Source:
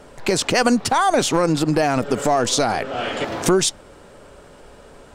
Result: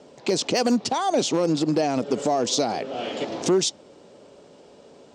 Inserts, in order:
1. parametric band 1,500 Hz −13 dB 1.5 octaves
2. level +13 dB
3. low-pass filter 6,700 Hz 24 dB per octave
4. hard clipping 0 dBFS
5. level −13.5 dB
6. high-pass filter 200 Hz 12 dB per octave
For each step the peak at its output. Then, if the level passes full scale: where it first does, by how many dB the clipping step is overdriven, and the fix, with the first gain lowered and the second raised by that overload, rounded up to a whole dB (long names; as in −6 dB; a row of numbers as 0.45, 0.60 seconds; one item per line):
−6.5, +6.5, +6.5, 0.0, −13.5, −10.5 dBFS
step 2, 6.5 dB
step 2 +6 dB, step 5 −6.5 dB